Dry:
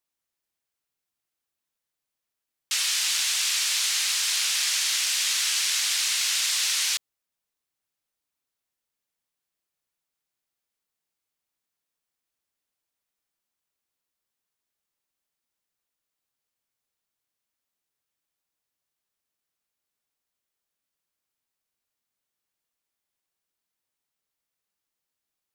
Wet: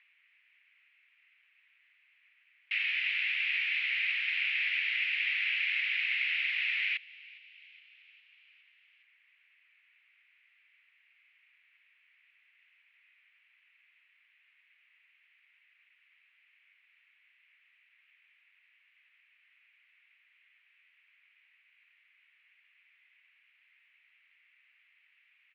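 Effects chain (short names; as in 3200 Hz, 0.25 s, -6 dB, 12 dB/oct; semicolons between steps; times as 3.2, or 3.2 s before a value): upward compressor, threshold -35 dBFS; Butterworth band-pass 2300 Hz, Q 2.9; air absorption 330 m; on a send: frequency-shifting echo 0.411 s, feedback 65%, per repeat +47 Hz, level -23 dB; on the sum: gain +8.5 dB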